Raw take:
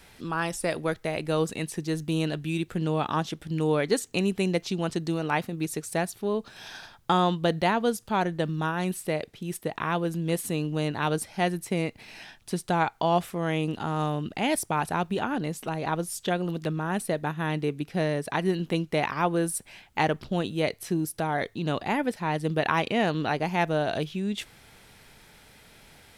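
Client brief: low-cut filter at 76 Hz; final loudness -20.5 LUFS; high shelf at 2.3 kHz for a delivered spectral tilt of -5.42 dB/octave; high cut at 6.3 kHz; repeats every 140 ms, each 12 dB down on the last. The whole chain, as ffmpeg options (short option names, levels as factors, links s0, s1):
-af "highpass=76,lowpass=6300,highshelf=f=2300:g=-3.5,aecho=1:1:140|280|420:0.251|0.0628|0.0157,volume=2.51"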